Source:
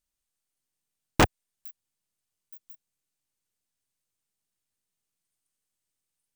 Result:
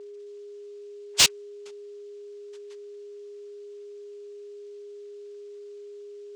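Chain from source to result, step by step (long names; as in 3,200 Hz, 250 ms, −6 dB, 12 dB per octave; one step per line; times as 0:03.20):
neighbouring bands swapped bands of 4,000 Hz
brick-wall band-stop 460–1,200 Hz
cochlear-implant simulation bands 4
steady tone 410 Hz −54 dBFS
mid-hump overdrive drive 26 dB, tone 4,200 Hz, clips at −6.5 dBFS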